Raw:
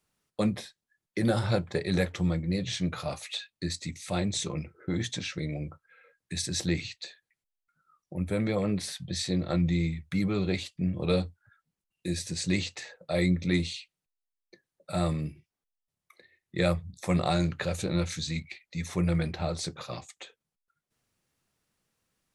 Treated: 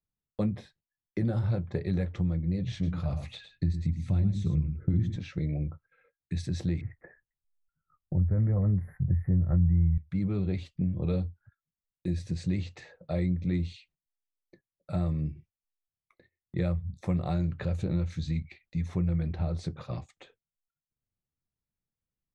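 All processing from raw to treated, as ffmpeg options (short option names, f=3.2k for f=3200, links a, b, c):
-filter_complex "[0:a]asettb=1/sr,asplit=3[a][b][c];[a]atrim=end=2.724[d];[b]atrim=start=2.72:end=5.16,asetpts=PTS-STARTPTS,afade=t=in:d=0.004:c=qsin,afade=t=out:st=2.436:d=0.004:c=qsin,asubboost=boost=9:cutoff=240,bandreject=f=60:t=h:w=6,bandreject=f=120:t=h:w=6,bandreject=f=180:t=h:w=6,bandreject=f=240:t=h:w=6,bandreject=f=300:t=h:w=6,bandreject=f=360:t=h:w=6,aecho=1:1:108:0.316,atrim=end_sample=107604[e];[c]atrim=start=5.156[f];[d][e]acrossfade=d=0.004:c1=hsin:c2=qsin[g];[g][f]acrossfade=d=0.004:c1=qsin:c2=hsin,asettb=1/sr,asplit=3[h][i][j];[h]atrim=end=6.814[k];[i]atrim=start=6.81:end=9.98,asetpts=PTS-STARTPTS,afade=t=in:d=0.004:c=qsin,afade=t=out:st=3.166:d=0.004:c=qsin,asubboost=boost=8:cutoff=120,acontrast=23,asuperstop=centerf=4900:order=20:qfactor=0.58[l];[j]atrim=start=9.976[m];[k][l]acrossfade=d=0.004:c1=hsin:c2=qsin[n];[n][m]acrossfade=d=0.004:c1=qsin:c2=hsin,agate=range=-17dB:threshold=-58dB:ratio=16:detection=peak,aemphasis=mode=reproduction:type=riaa,acompressor=threshold=-22dB:ratio=3,volume=-4.5dB"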